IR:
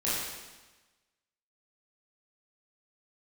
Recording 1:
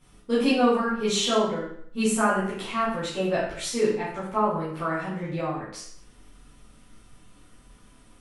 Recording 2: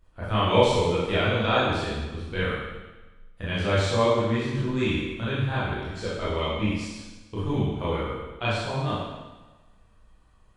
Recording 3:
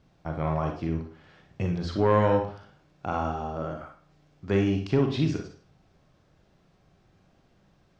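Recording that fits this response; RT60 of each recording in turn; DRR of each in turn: 2; 0.65 s, 1.2 s, 0.45 s; -11.0 dB, -10.0 dB, 3.0 dB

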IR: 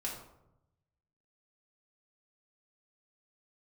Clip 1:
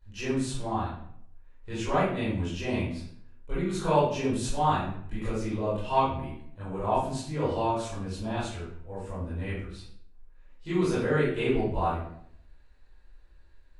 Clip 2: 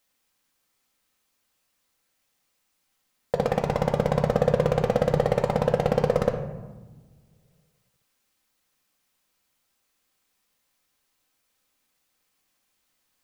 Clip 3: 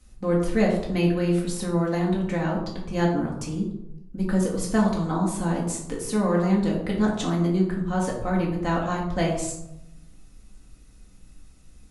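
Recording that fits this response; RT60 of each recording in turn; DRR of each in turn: 3; 0.65 s, 1.2 s, 0.85 s; -13.5 dB, 1.5 dB, -3.5 dB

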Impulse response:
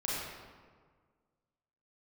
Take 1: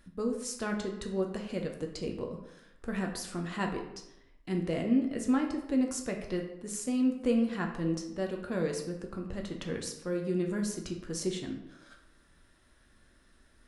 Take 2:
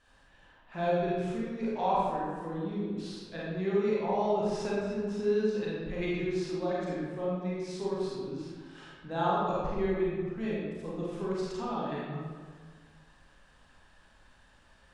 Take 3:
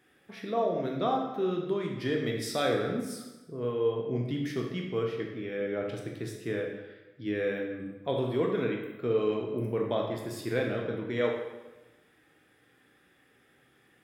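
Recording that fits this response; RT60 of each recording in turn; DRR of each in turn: 2; 0.85 s, 1.6 s, 1.1 s; 2.0 dB, -7.0 dB, 0.0 dB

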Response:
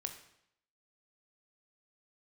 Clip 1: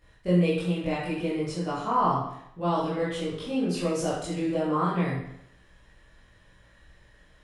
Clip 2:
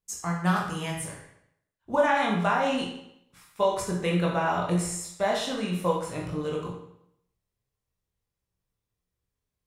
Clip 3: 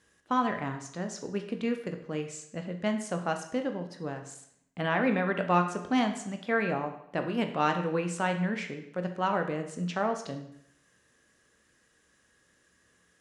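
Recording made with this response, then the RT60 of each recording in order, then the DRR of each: 3; 0.75 s, 0.75 s, 0.75 s; -9.5 dB, -3.0 dB, 5.0 dB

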